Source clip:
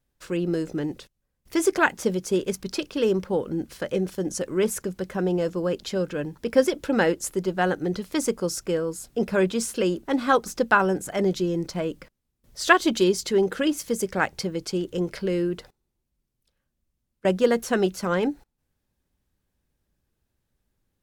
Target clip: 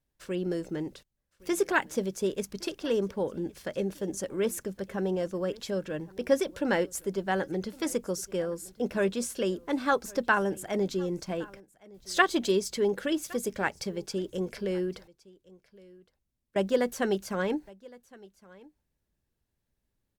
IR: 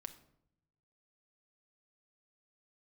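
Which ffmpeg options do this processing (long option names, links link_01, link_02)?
-af "bandreject=frequency=1200:width=24,aecho=1:1:1160:0.0708,asetrate=45938,aresample=44100,volume=-5.5dB"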